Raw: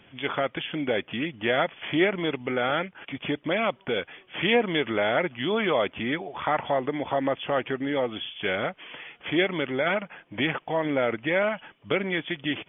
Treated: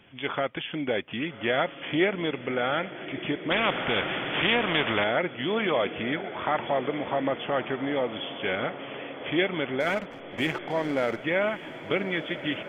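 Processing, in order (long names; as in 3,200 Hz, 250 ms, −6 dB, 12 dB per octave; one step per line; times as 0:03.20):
0:09.80–0:11.22: slack as between gear wheels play −34 dBFS
feedback delay with all-pass diffusion 1,207 ms, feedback 65%, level −12.5 dB
0:03.50–0:05.04: every bin compressed towards the loudest bin 2 to 1
level −1.5 dB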